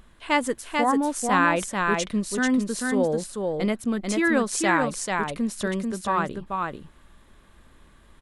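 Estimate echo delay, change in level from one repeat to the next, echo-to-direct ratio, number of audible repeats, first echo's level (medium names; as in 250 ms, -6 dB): 440 ms, no regular repeats, -3.5 dB, 1, -3.5 dB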